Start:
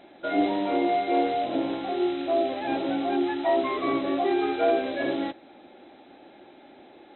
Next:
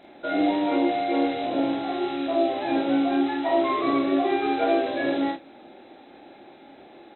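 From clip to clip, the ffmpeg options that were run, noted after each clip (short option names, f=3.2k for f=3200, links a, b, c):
-filter_complex "[0:a]bandreject=f=3.1k:w=27,asplit=2[a][b];[b]aecho=0:1:29|47|77:0.562|0.668|0.237[c];[a][c]amix=inputs=2:normalize=0"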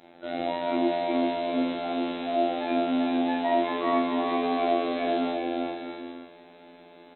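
-af "afftfilt=real='hypot(re,im)*cos(PI*b)':imag='0':win_size=2048:overlap=0.75,aecho=1:1:390|643.5|808.3|915.4|985:0.631|0.398|0.251|0.158|0.1"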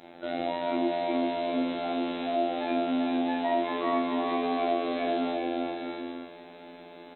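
-af "acompressor=threshold=-38dB:ratio=1.5,volume=3.5dB"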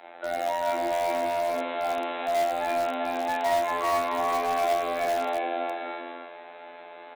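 -filter_complex "[0:a]acrossover=split=540 2700:gain=0.0708 1 0.126[a][b][c];[a][b][c]amix=inputs=3:normalize=0,asplit=2[d][e];[e]aeval=exprs='(mod(23.7*val(0)+1,2)-1)/23.7':c=same,volume=-10.5dB[f];[d][f]amix=inputs=2:normalize=0,volume=5.5dB"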